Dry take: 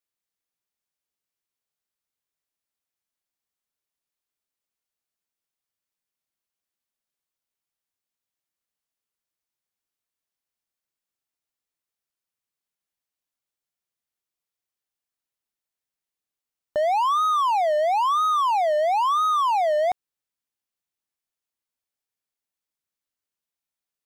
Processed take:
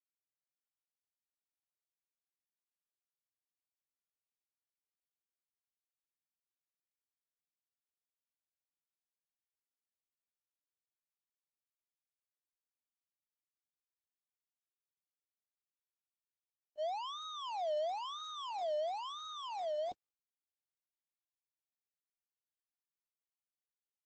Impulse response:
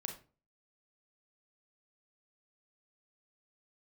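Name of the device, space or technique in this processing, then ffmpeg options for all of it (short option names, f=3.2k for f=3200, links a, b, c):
video call: -filter_complex "[0:a]asettb=1/sr,asplit=3[a][b][c];[a]atrim=end=16.984[d];[b]atrim=start=16.98:end=17.77,asetpts=PTS-STARTPTS,afade=t=in:d=0.004:c=qsin,afade=t=out:st=0.786:d=0.004:c=qsin,lowpass=9.4k[e];[c]atrim=start=17.766[f];[d][e]acrossfade=d=0.004:c1=hsin:c2=qsin[g];[g][f]acrossfade=d=0.004:c1=qsin:c2=hsin,agate=range=-59dB:threshold=-17dB:ratio=16:detection=peak,highpass=130,firequalizer=gain_entry='entry(160,0);entry(290,7);entry(780,-5);entry(1200,-13);entry(2100,-14);entry(3100,5);entry(9000,-8)':delay=0.05:min_phase=1,dynaudnorm=f=540:g=17:m=7dB,volume=7.5dB" -ar 48000 -c:a libopus -b:a 12k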